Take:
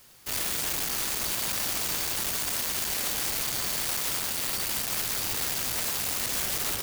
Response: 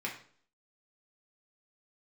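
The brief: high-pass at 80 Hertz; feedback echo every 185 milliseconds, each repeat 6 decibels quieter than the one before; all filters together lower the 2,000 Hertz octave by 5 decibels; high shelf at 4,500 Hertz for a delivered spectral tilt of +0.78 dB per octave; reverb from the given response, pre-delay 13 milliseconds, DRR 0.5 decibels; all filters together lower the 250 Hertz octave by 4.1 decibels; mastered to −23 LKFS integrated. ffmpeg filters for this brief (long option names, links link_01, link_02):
-filter_complex "[0:a]highpass=80,equalizer=frequency=250:width_type=o:gain=-5.5,equalizer=frequency=2000:width_type=o:gain=-8.5,highshelf=frequency=4500:gain=9,aecho=1:1:185|370|555|740|925|1110:0.501|0.251|0.125|0.0626|0.0313|0.0157,asplit=2[link_01][link_02];[1:a]atrim=start_sample=2205,adelay=13[link_03];[link_02][link_03]afir=irnorm=-1:irlink=0,volume=-4dB[link_04];[link_01][link_04]amix=inputs=2:normalize=0,volume=-5.5dB"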